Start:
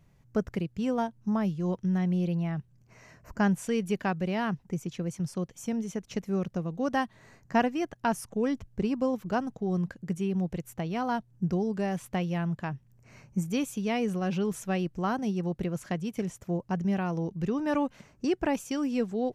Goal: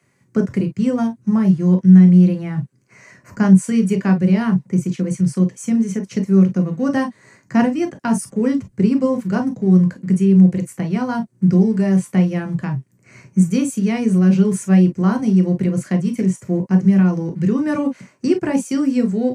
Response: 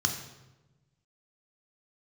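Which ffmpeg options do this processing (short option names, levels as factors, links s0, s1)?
-filter_complex "[0:a]acrossover=split=350|1500|2600[s0][s1][s2][s3];[s0]aeval=exprs='sgn(val(0))*max(abs(val(0))-0.00133,0)':c=same[s4];[s2]acompressor=threshold=0.00126:ratio=6[s5];[s4][s1][s5][s3]amix=inputs=4:normalize=0[s6];[1:a]atrim=start_sample=2205,atrim=end_sample=3528,asetrate=61740,aresample=44100[s7];[s6][s7]afir=irnorm=-1:irlink=0,volume=1.58"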